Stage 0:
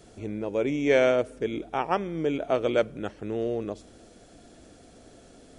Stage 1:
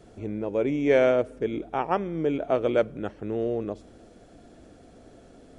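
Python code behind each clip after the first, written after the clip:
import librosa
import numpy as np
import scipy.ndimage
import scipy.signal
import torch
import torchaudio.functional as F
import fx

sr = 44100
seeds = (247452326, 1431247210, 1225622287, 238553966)

y = fx.high_shelf(x, sr, hz=2700.0, db=-10.0)
y = F.gain(torch.from_numpy(y), 1.5).numpy()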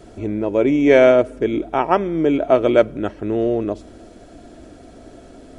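y = x + 0.31 * np.pad(x, (int(3.1 * sr / 1000.0), 0))[:len(x)]
y = F.gain(torch.from_numpy(y), 8.5).numpy()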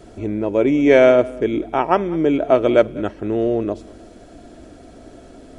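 y = x + 10.0 ** (-22.0 / 20.0) * np.pad(x, (int(197 * sr / 1000.0), 0))[:len(x)]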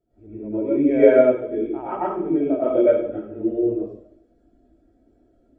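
y = fx.rev_plate(x, sr, seeds[0], rt60_s=0.91, hf_ratio=0.9, predelay_ms=85, drr_db=-9.0)
y = fx.spectral_expand(y, sr, expansion=1.5)
y = F.gain(torch.from_numpy(y), -10.5).numpy()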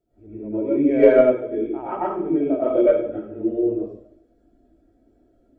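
y = fx.tracing_dist(x, sr, depth_ms=0.023)
y = fx.hum_notches(y, sr, base_hz=60, count=4)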